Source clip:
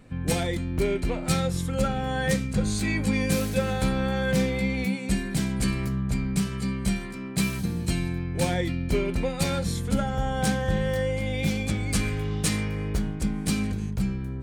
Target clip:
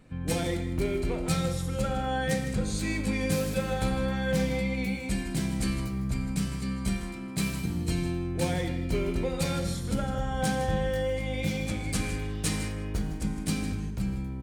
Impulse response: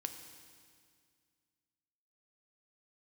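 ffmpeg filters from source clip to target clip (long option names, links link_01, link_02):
-filter_complex "[0:a]asplit=2[link_01][link_02];[link_02]adelay=157.4,volume=-11dB,highshelf=frequency=4000:gain=-3.54[link_03];[link_01][link_03]amix=inputs=2:normalize=0[link_04];[1:a]atrim=start_sample=2205,afade=type=out:start_time=0.26:duration=0.01,atrim=end_sample=11907[link_05];[link_04][link_05]afir=irnorm=-1:irlink=0,volume=-2dB"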